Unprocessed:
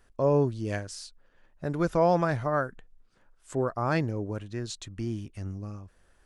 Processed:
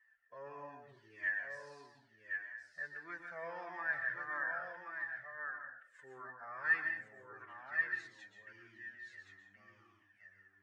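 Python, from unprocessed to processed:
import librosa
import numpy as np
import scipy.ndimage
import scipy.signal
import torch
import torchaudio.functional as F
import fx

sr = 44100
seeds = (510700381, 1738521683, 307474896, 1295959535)

y = fx.bandpass_q(x, sr, hz=1800.0, q=19.0)
y = fx.stretch_vocoder(y, sr, factor=1.7)
y = y + 10.0 ** (-5.5 / 20.0) * np.pad(y, (int(1074 * sr / 1000.0), 0))[:len(y)]
y = fx.rev_plate(y, sr, seeds[0], rt60_s=0.55, hf_ratio=0.75, predelay_ms=110, drr_db=4.0)
y = fx.comb_cascade(y, sr, direction='falling', hz=1.6)
y = y * librosa.db_to_amplitude(13.5)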